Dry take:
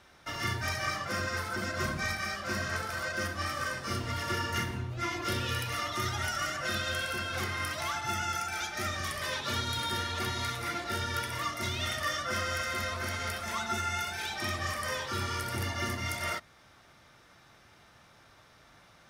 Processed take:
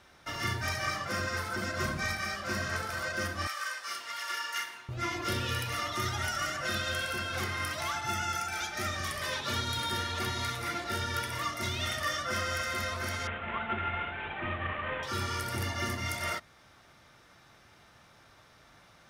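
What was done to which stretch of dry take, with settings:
0:03.47–0:04.89: high-pass filter 1,100 Hz
0:13.27–0:15.03: variable-slope delta modulation 16 kbit/s

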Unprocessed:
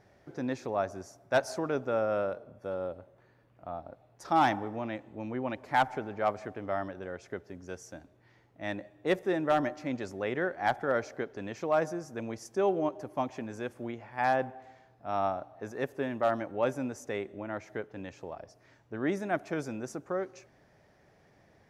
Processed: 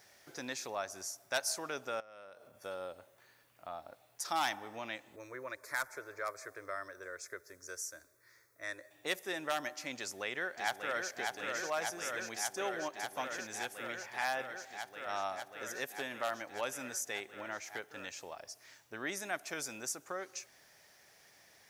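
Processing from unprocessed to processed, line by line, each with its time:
0:02.00–0:02.61: downward compressor 5 to 1, threshold −47 dBFS
0:05.16–0:08.91: phaser with its sweep stopped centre 800 Hz, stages 6
0:09.98–0:11.12: delay throw 590 ms, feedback 85%, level −4.5 dB
whole clip: first-order pre-emphasis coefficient 0.97; downward compressor 1.5 to 1, threshold −58 dBFS; level +16 dB

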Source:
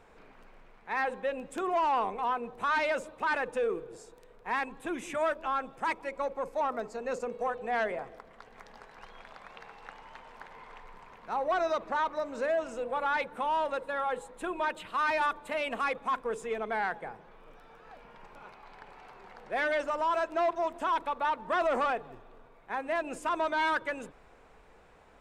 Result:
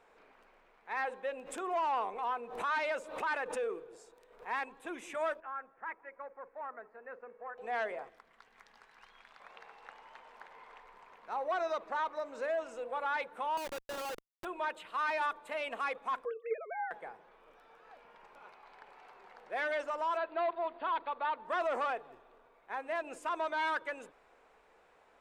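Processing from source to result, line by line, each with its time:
0:01.38–0:04.48: background raised ahead of every attack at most 82 dB per second
0:05.40–0:07.58: transistor ladder low-pass 2,000 Hz, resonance 55%
0:08.09–0:09.40: parametric band 550 Hz −10.5 dB 1.6 octaves
0:13.57–0:14.45: comparator with hysteresis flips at −32.5 dBFS
0:16.25–0:16.91: three sine waves on the formant tracks
0:20.17–0:21.45: linear-phase brick-wall low-pass 4,800 Hz
whole clip: bass and treble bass −14 dB, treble −2 dB; level −4.5 dB

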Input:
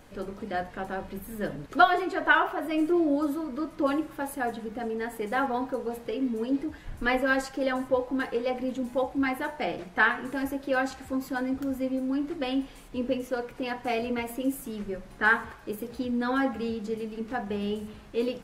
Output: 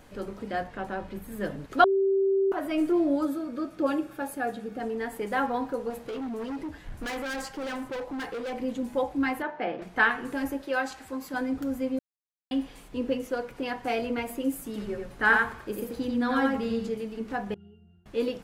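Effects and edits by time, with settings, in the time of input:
0:00.64–0:01.32: high-shelf EQ 7,800 Hz −7.5 dB
0:01.84–0:02.52: beep over 389 Hz −20.5 dBFS
0:03.25–0:04.80: notch comb filter 1,000 Hz
0:05.90–0:08.53: hard clipping −31.5 dBFS
0:09.42–0:09.82: band-pass filter 180–2,400 Hz
0:10.63–0:11.34: low-shelf EQ 290 Hz −10 dB
0:11.99–0:12.51: silence
0:14.65–0:16.89: single-tap delay 88 ms −3 dB
0:17.54–0:18.06: resonances in every octave F, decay 0.54 s

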